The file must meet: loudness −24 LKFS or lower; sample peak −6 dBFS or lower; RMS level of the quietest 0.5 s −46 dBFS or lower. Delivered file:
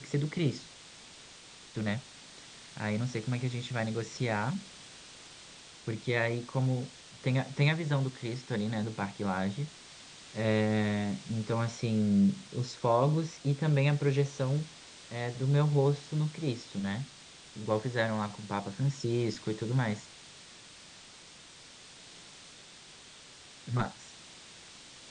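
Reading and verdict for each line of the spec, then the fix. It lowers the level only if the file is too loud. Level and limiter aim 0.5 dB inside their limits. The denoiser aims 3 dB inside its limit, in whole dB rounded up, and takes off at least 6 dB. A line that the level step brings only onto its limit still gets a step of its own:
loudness −32.0 LKFS: in spec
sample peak −13.5 dBFS: in spec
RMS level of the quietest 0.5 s −53 dBFS: in spec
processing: no processing needed

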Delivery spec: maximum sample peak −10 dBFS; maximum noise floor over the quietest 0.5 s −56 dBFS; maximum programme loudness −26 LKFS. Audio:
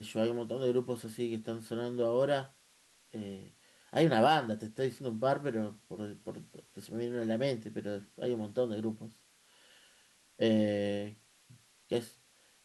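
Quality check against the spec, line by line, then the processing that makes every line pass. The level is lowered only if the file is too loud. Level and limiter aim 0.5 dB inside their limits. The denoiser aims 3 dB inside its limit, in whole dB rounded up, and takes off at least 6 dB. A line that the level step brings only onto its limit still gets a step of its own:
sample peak −14.0 dBFS: in spec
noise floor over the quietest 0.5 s −66 dBFS: in spec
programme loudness −33.5 LKFS: in spec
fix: no processing needed

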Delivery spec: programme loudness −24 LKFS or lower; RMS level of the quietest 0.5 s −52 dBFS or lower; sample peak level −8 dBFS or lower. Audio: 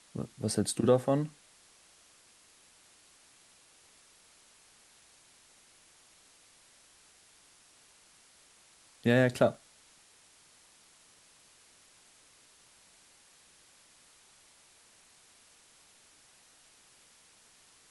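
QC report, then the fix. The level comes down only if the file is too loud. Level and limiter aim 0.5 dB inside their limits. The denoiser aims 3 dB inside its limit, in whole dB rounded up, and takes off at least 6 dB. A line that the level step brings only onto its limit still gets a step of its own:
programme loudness −29.0 LKFS: in spec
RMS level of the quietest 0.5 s −61 dBFS: in spec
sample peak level −11.0 dBFS: in spec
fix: no processing needed

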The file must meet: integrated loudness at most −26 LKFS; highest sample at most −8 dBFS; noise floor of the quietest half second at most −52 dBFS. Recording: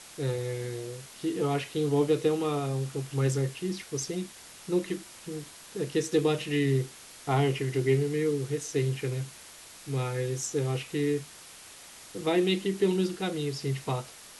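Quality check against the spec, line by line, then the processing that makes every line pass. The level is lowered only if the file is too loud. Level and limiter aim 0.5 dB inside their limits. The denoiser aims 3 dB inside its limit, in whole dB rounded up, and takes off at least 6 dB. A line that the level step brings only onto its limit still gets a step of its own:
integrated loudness −30.0 LKFS: in spec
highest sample −13.5 dBFS: in spec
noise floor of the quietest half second −49 dBFS: out of spec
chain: broadband denoise 6 dB, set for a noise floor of −49 dBFS

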